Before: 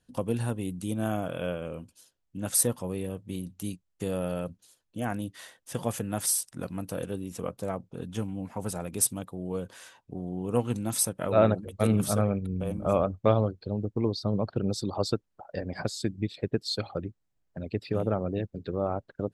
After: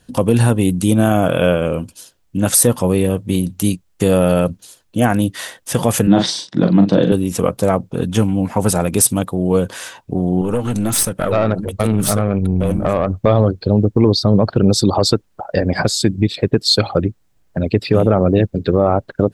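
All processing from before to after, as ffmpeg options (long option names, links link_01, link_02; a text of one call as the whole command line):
ffmpeg -i in.wav -filter_complex "[0:a]asettb=1/sr,asplit=3[link_01][link_02][link_03];[link_01]atrim=end=6.074[link_04];[link_02]atrim=start=6.07:end=7.12,asetpts=PTS-STARTPTS,afade=type=in:duration=0.004:curve=qsin,afade=type=out:start_time=1.046:duration=0.004:curve=qsin,highpass=frequency=120:width=0.5412,highpass=frequency=120:width=1.3066,equalizer=frequency=190:width_type=q:width=4:gain=8,equalizer=frequency=320:width_type=q:width=4:gain=9,equalizer=frequency=1300:width_type=q:width=4:gain=-5,equalizer=frequency=2500:width_type=q:width=4:gain=-6,equalizer=frequency=3700:width_type=q:width=4:gain=8,lowpass=frequency=4400:width=0.5412,lowpass=frequency=4400:width=1.3066,asplit=2[link_05][link_06];[link_06]adelay=40,volume=-7dB[link_07];[link_05][link_07]amix=inputs=2:normalize=0,atrim=end_sample=46305[link_08];[link_03]atrim=start=7.116[link_09];[link_04][link_08]acrossfade=duration=0.004:curve1=hsin:curve2=qsin[link_10];[link_10][link_09]acrossfade=duration=0.004:curve1=qsin:curve2=hsin,asettb=1/sr,asplit=3[link_11][link_12][link_13];[link_11]atrim=end=10.414[link_14];[link_12]atrim=start=10.41:end=13.16,asetpts=PTS-STARTPTS,afade=type=in:duration=0.004:curve=qsin,afade=type=out:start_time=2.746:duration=0.004:curve=qsin,equalizer=frequency=1400:width=7.4:gain=4,acompressor=threshold=-27dB:ratio=5:attack=3.2:release=140:knee=1:detection=peak,aeval=exprs='(tanh(20*val(0)+0.45)-tanh(0.45))/20':channel_layout=same[link_15];[link_13]atrim=start=13.156[link_16];[link_14][link_15]acrossfade=duration=0.004:curve1=hsin:curve2=qsin[link_17];[link_17][link_16]acrossfade=duration=0.004:curve1=qsin:curve2=hsin,acontrast=85,alimiter=level_in=12dB:limit=-1dB:release=50:level=0:latency=1,volume=-1dB" out.wav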